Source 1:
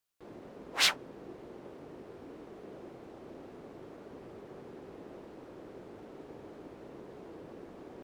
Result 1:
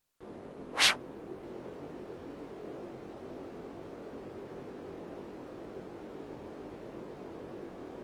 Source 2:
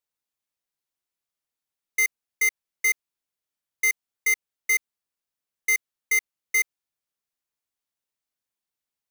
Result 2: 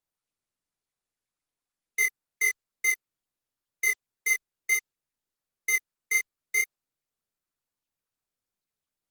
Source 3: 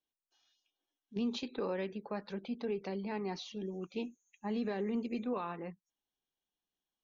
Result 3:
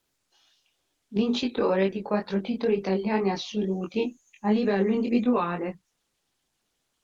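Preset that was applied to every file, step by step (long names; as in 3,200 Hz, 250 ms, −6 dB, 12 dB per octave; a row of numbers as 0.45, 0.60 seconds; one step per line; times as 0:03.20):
chorus effect 2.1 Hz, delay 20 ms, depth 3.9 ms
Opus 32 kbit/s 48,000 Hz
normalise the peak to −12 dBFS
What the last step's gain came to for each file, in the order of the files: +6.5, +0.5, +16.0 decibels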